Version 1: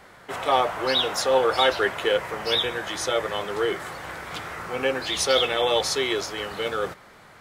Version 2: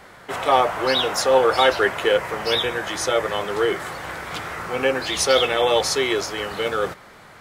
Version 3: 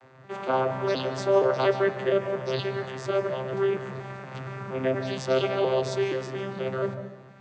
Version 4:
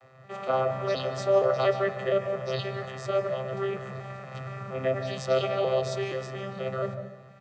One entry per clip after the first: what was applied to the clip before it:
dynamic bell 3.6 kHz, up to -4 dB, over -39 dBFS, Q 2.8; trim +4 dB
vocoder on a broken chord bare fifth, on C3, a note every 235 ms; on a send at -10 dB: reverberation RT60 0.85 s, pre-delay 144 ms; on the sum: trim -5.5 dB
comb 1.6 ms, depth 65%; trim -3 dB

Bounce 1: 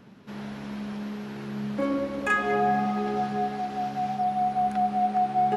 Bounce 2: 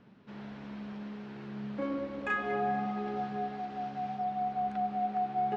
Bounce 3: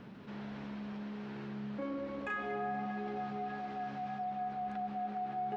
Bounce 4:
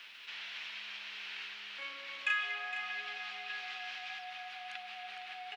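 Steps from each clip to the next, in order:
low-pass 4.1 kHz 12 dB/octave; trim -7.5 dB
feedback echo behind a band-pass 299 ms, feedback 83%, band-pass 1.5 kHz, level -13.5 dB; level flattener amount 50%; trim -7.5 dB
resonant high-pass 2.7 kHz, resonance Q 2.1; delay 462 ms -9.5 dB; trim +11 dB

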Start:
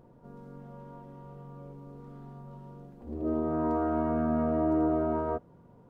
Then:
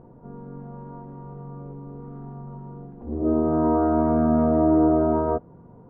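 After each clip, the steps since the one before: low-pass 1.2 kHz 12 dB/octave; band-stop 570 Hz, Q 13; trim +8.5 dB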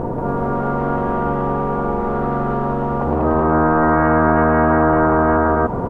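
low-pass that closes with the level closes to 1.4 kHz, closed at -20 dBFS; loudspeakers at several distances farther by 63 m -1 dB, 99 m -2 dB; spectrum-flattening compressor 4:1; trim +1.5 dB

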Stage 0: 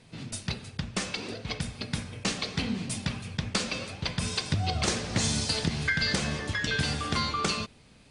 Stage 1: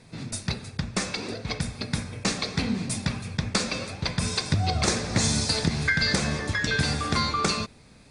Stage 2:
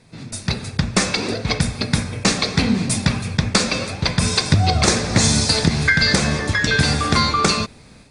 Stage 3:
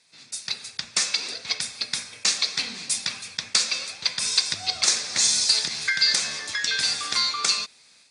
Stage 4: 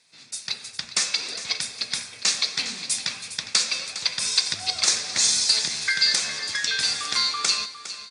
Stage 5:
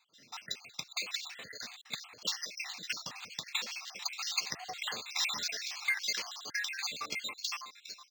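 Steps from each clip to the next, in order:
peaking EQ 3 kHz -11.5 dB 0.22 oct; trim +4 dB
level rider gain up to 11.5 dB
band-pass filter 5.7 kHz, Q 0.8
feedback delay 408 ms, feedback 37%, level -13 dB
random holes in the spectrogram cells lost 73%; comb of notches 1.5 kHz; decimation joined by straight lines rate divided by 4×; trim -3 dB

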